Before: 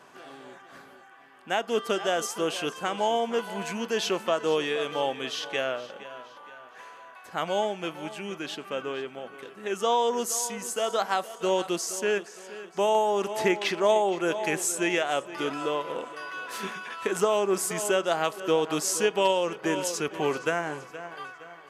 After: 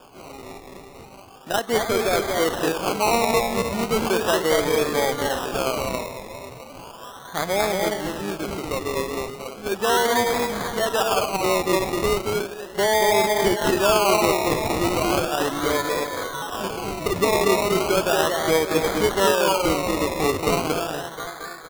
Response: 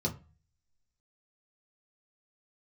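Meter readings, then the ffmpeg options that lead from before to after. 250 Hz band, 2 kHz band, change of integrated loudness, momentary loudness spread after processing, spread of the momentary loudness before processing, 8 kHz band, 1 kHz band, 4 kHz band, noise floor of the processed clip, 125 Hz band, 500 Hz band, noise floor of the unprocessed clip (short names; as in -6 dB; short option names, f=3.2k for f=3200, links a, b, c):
+7.0 dB, +6.0 dB, +6.0 dB, 13 LU, 17 LU, +3.5 dB, +6.0 dB, +6.0 dB, -42 dBFS, +11.0 dB, +5.5 dB, -50 dBFS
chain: -filter_complex "[0:a]asplit=2[a][b];[b]alimiter=limit=-19.5dB:level=0:latency=1,volume=-1dB[c];[a][c]amix=inputs=2:normalize=0,adynamicsmooth=sensitivity=1:basefreq=6.1k,aecho=1:1:230.3|291.5:0.708|0.355,acrusher=samples=22:mix=1:aa=0.000001:lfo=1:lforange=13.2:lforate=0.36"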